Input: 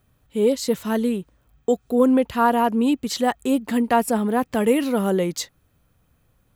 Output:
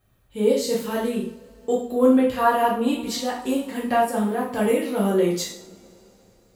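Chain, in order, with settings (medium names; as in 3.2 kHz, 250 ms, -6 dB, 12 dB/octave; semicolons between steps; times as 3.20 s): 3.09–5.14 s: tremolo 2.6 Hz, depth 50%; two-slope reverb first 0.51 s, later 3.9 s, from -28 dB, DRR -6 dB; trim -6.5 dB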